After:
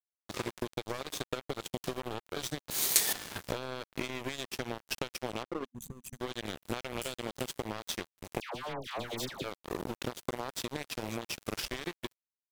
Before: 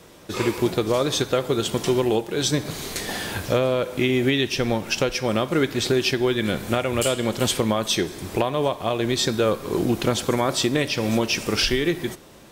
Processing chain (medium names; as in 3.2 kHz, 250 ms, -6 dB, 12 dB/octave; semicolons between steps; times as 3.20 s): 5.43–6.13 s: resonances exaggerated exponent 2; compression 12:1, threshold -25 dBFS, peak gain reduction 10 dB; 2.70–3.13 s: RIAA curve recording; crossover distortion -27.5 dBFS; 5.65–6.20 s: time-frequency box 240–5900 Hz -17 dB; 8.40–9.44 s: phase dispersion lows, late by 148 ms, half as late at 1.1 kHz